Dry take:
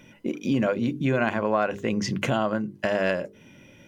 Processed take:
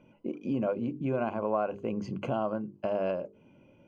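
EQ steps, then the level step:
moving average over 24 samples
low-shelf EQ 420 Hz −9 dB
0.0 dB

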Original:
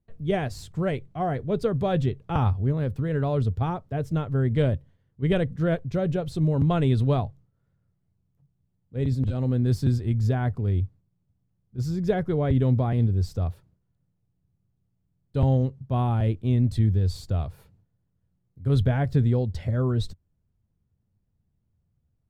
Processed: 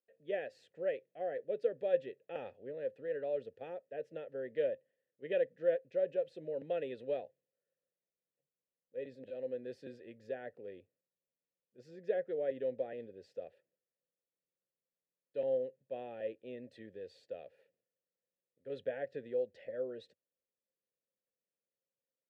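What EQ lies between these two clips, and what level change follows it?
formant filter e
high-pass filter 250 Hz 12 dB per octave
0.0 dB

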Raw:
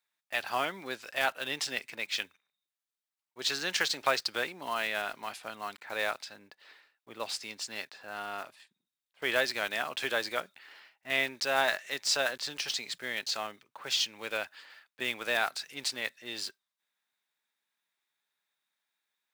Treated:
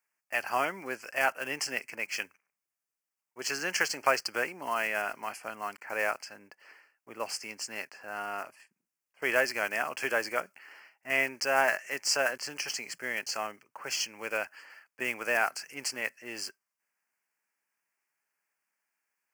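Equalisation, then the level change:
Butterworth band-reject 3,700 Hz, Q 1.8
low-shelf EQ 120 Hz −6.5 dB
+2.5 dB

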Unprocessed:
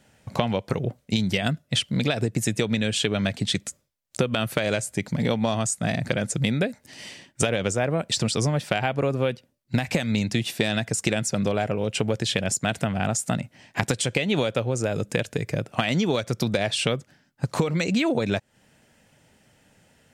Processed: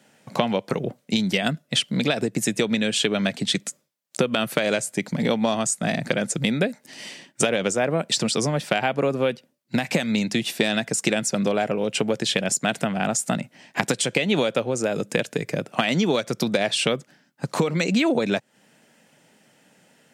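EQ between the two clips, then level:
high-pass filter 160 Hz 24 dB per octave
+2.5 dB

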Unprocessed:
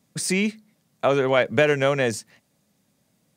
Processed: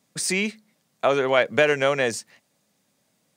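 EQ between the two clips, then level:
low-shelf EQ 240 Hz −11 dB
parametric band 12,000 Hz −5 dB 0.27 octaves
+1.5 dB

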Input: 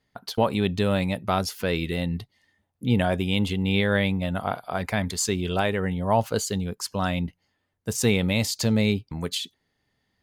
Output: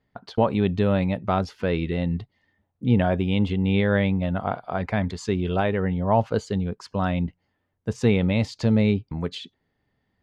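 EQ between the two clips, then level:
head-to-tape spacing loss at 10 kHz 27 dB
+3.0 dB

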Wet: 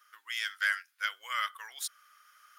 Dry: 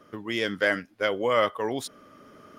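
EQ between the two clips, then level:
high-pass with resonance 1,400 Hz, resonance Q 3.1
first difference
+2.0 dB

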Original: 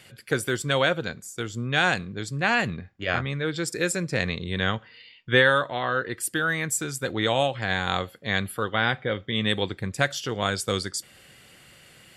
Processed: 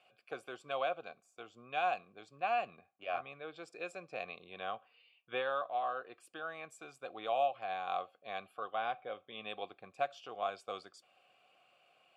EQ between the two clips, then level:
formant filter a
low-shelf EQ 72 Hz −10.5 dB
−1.5 dB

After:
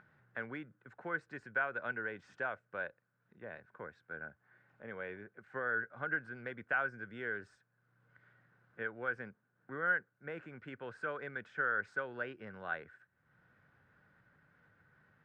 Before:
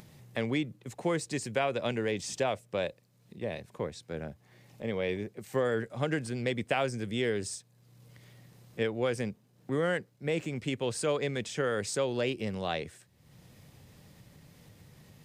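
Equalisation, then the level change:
resonant band-pass 1,500 Hz, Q 12
spectral tilt −4.5 dB per octave
+12.5 dB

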